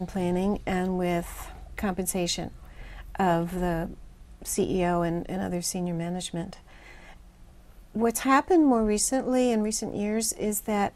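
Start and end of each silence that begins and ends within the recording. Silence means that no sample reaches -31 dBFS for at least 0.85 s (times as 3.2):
6.53–7.95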